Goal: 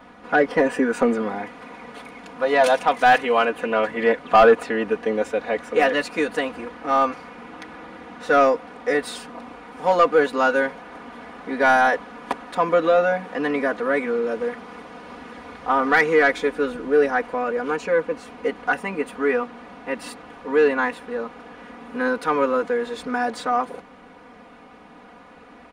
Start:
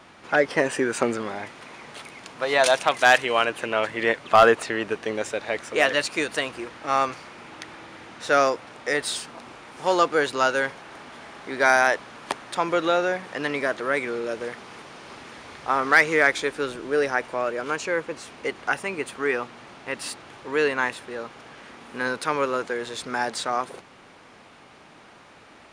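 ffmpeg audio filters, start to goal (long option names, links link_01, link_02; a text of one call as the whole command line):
ffmpeg -i in.wav -af "equalizer=frequency=6800:width_type=o:width=2.8:gain=-14,aecho=1:1:4.1:0.97,asoftclip=type=tanh:threshold=-9dB,volume=3dB" out.wav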